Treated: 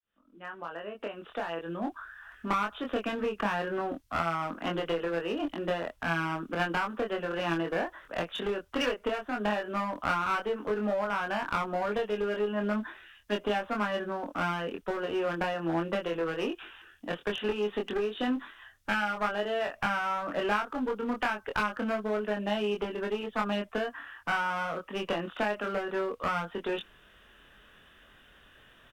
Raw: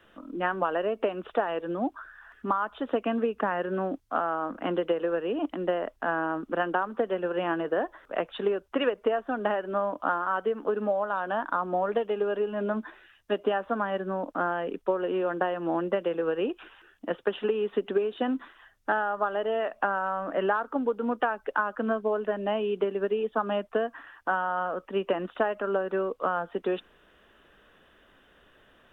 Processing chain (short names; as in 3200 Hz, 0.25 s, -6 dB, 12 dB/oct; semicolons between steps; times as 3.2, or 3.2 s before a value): opening faded in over 2.44 s; bell 470 Hz -9 dB 2.8 oct; one-sided clip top -34.5 dBFS; doubler 24 ms -3 dB; gain +4 dB